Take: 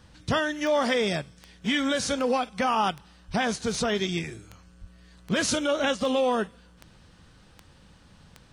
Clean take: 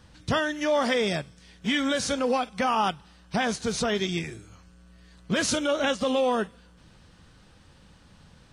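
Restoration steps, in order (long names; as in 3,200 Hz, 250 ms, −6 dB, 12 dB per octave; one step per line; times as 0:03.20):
click removal
0:03.27–0:03.39: high-pass filter 140 Hz 24 dB per octave
0:04.80–0:04.92: high-pass filter 140 Hz 24 dB per octave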